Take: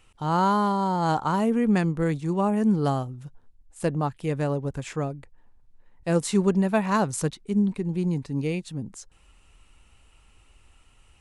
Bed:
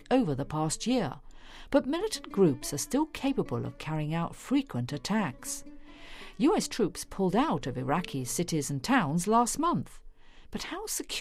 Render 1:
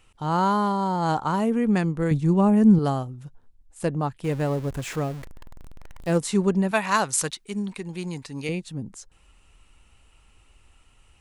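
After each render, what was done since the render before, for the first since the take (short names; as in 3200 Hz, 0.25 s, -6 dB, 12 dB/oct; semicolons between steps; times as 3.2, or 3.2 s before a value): 2.11–2.79 low shelf 240 Hz +11.5 dB; 4.24–6.18 zero-crossing step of -35 dBFS; 6.71–8.49 tilt shelf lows -8.5 dB, about 680 Hz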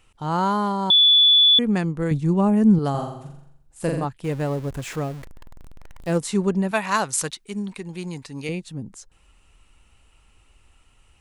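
0.9–1.59 bleep 3450 Hz -11 dBFS; 2.9–4.05 flutter echo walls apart 7.3 m, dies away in 0.71 s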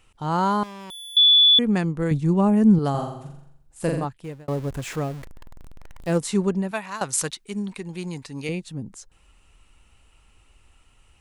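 0.63–1.17 tube stage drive 38 dB, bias 0.35; 3.95–4.48 fade out; 6.39–7.01 fade out, to -15 dB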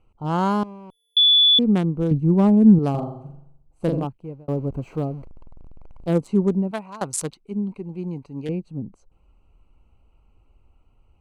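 Wiener smoothing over 25 samples; dynamic EQ 260 Hz, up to +4 dB, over -34 dBFS, Q 0.81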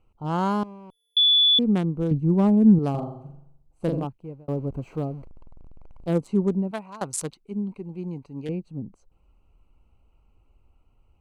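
gain -3 dB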